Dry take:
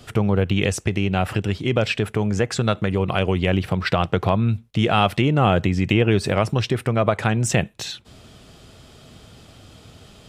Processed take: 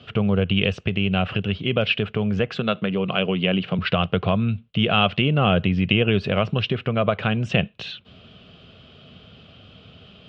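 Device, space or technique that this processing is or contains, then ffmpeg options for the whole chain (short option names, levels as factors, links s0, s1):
guitar cabinet: -filter_complex "[0:a]highpass=79,equalizer=f=120:t=q:w=4:g=-3,equalizer=f=180:t=q:w=4:g=3,equalizer=f=320:t=q:w=4:g=-8,equalizer=f=880:t=q:w=4:g=-9,equalizer=f=1900:t=q:w=4:g=-6,equalizer=f=2900:t=q:w=4:g=8,lowpass=f=3600:w=0.5412,lowpass=f=3600:w=1.3066,asettb=1/sr,asplit=3[s0][s1][s2];[s0]atrim=end=2.534[s3];[s1]atrim=start=2.53:end=3.79,asetpts=PTS-STARTPTS,afade=t=in:d=0.004:c=qsin,afade=t=out:st=1.256:d=0.004:c=qsin,highpass=f=140:w=0.5412,highpass=f=140:w=1.3066[s4];[s2]atrim=start=3.786[s5];[s3][s4]acrossfade=d=0.004:c1=hsin:c2=qsin[s6];[s6][s5]acrossfade=d=0.004:c1=qsin:c2=hsin"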